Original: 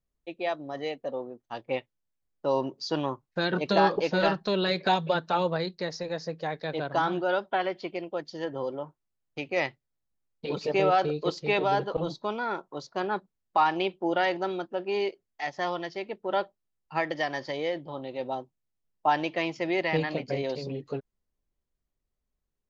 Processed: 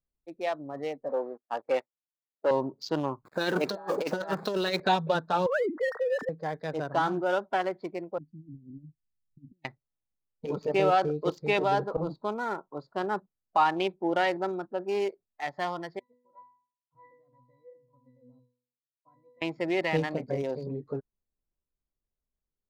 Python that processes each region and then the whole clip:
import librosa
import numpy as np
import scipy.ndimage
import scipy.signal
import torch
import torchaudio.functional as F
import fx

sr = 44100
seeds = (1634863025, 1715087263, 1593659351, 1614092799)

y = fx.chain(x, sr, fx.high_shelf(hz=2500.0, db=-7.5),
    fx.leveller(passes=2),
    fx.bandpass_edges(low_hz=400.0, high_hz=5800.0), at=(1.09, 2.51))
y = fx.chain(y, sr, fx.zero_step(step_db=-37.0),
    fx.highpass(hz=250.0, slope=12),
    fx.over_compress(threshold_db=-28.0, ratio=-0.5), at=(3.25, 4.8))
y = fx.chain(y, sr, fx.sine_speech(),
    fx.peak_eq(hz=1500.0, db=6.0, octaves=0.78),
    fx.env_flatten(amount_pct=70), at=(5.46, 6.29))
y = fx.chain(y, sr, fx.fixed_phaser(hz=1800.0, stages=6),
    fx.over_compress(threshold_db=-43.0, ratio=-0.5),
    fx.cheby2_bandstop(low_hz=930.0, high_hz=3100.0, order=4, stop_db=70), at=(8.18, 9.65))
y = fx.chain(y, sr, fx.low_shelf(hz=110.0, db=4.0),
    fx.level_steps(step_db=12),
    fx.octave_resonator(note='B', decay_s=0.53), at=(15.99, 19.42))
y = fx.wiener(y, sr, points=15)
y = fx.noise_reduce_blind(y, sr, reduce_db=6)